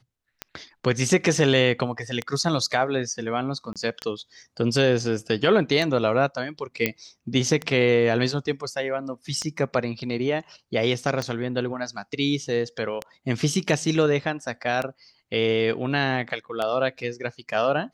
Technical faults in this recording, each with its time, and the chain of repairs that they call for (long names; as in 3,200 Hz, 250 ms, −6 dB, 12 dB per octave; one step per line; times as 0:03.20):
scratch tick 33 1/3 rpm −13 dBFS
0:03.73–0:03.76: drop-out 27 ms
0:06.86: click −7 dBFS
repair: click removal
repair the gap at 0:03.73, 27 ms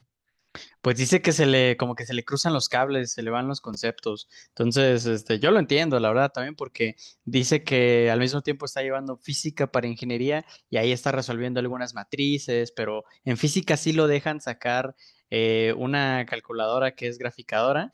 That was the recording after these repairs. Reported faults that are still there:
none of them is left